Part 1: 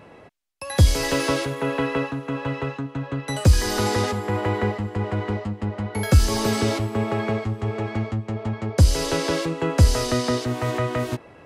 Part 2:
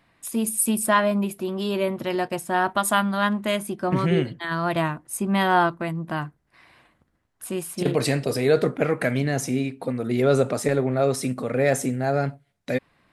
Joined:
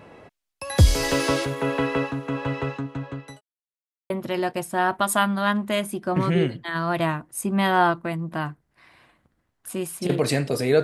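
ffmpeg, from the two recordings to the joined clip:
ffmpeg -i cue0.wav -i cue1.wav -filter_complex "[0:a]apad=whole_dur=10.83,atrim=end=10.83,asplit=2[link_01][link_02];[link_01]atrim=end=3.41,asetpts=PTS-STARTPTS,afade=type=out:start_time=2.64:duration=0.77:curve=qsin[link_03];[link_02]atrim=start=3.41:end=4.1,asetpts=PTS-STARTPTS,volume=0[link_04];[1:a]atrim=start=1.86:end=8.59,asetpts=PTS-STARTPTS,afade=type=in:duration=0.004:curve=hsin[link_05];[link_03][link_04][link_05]concat=n=3:v=0:a=1" out.wav

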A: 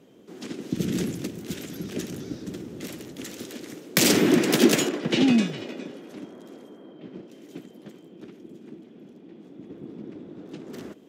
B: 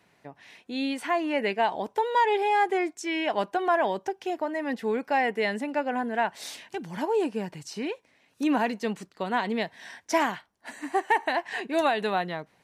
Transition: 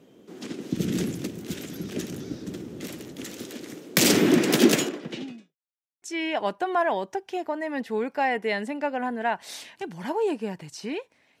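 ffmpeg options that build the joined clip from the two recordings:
ffmpeg -i cue0.wav -i cue1.wav -filter_complex "[0:a]apad=whole_dur=11.4,atrim=end=11.4,asplit=2[link_01][link_02];[link_01]atrim=end=5.56,asetpts=PTS-STARTPTS,afade=type=out:start_time=4.73:duration=0.83:curve=qua[link_03];[link_02]atrim=start=5.56:end=6.02,asetpts=PTS-STARTPTS,volume=0[link_04];[1:a]atrim=start=2.95:end=8.33,asetpts=PTS-STARTPTS,afade=type=in:duration=0.004:curve=hsin[link_05];[link_03][link_04][link_05]concat=n=3:v=0:a=1" out.wav

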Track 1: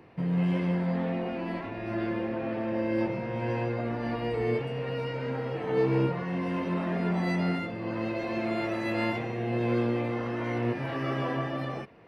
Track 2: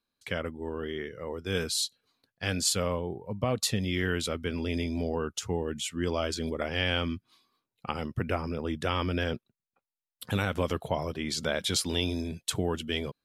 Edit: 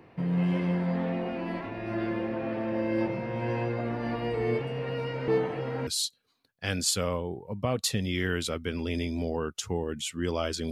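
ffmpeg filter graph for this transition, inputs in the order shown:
ffmpeg -i cue0.wav -i cue1.wav -filter_complex "[0:a]apad=whole_dur=10.71,atrim=end=10.71,asplit=2[link_01][link_02];[link_01]atrim=end=5.282[link_03];[link_02]atrim=start=5.278:end=5.872,asetpts=PTS-STARTPTS,areverse[link_04];[1:a]atrim=start=1.658:end=6.5[link_05];[link_03][link_04]acrossfade=duration=0.004:curve1=hsin:curve2=hsin[link_06];[link_06][link_05]acrossfade=duration=0.004:curve1=hsin:curve2=hsin" out.wav

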